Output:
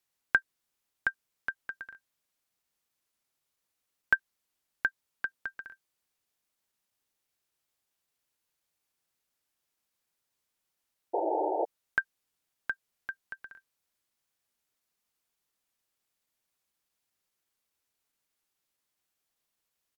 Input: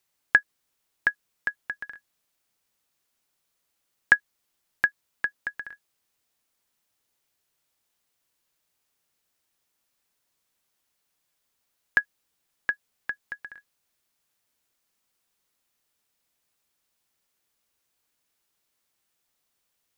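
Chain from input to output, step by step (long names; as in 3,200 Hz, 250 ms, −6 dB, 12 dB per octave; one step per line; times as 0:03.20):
sound drawn into the spectrogram noise, 0:11.13–0:11.64, 320–980 Hz −23 dBFS
pitch shifter −1 semitone
level −6 dB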